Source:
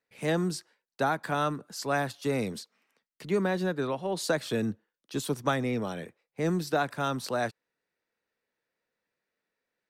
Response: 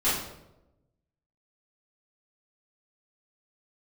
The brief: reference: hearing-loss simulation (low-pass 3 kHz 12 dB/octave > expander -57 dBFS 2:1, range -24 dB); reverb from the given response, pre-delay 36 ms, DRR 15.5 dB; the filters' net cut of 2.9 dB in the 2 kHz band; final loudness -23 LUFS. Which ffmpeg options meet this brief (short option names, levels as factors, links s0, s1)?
-filter_complex "[0:a]equalizer=f=2000:t=o:g=-3.5,asplit=2[s0][s1];[1:a]atrim=start_sample=2205,adelay=36[s2];[s1][s2]afir=irnorm=-1:irlink=0,volume=0.0398[s3];[s0][s3]amix=inputs=2:normalize=0,lowpass=3000,agate=range=0.0631:threshold=0.00141:ratio=2,volume=2.51"